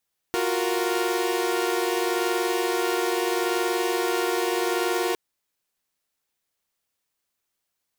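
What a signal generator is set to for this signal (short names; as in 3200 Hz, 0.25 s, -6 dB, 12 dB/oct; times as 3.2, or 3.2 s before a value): chord F4/F#4/A#4 saw, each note -24.5 dBFS 4.81 s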